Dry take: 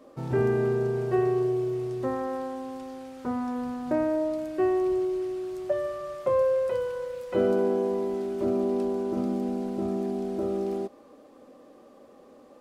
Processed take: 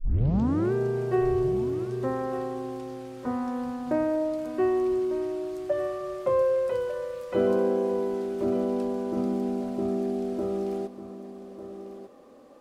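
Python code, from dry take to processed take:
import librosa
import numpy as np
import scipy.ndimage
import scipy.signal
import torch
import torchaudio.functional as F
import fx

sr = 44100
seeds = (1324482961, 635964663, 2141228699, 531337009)

y = fx.tape_start_head(x, sr, length_s=0.73)
y = y + 10.0 ** (-12.0 / 20.0) * np.pad(y, (int(1198 * sr / 1000.0), 0))[:len(y)]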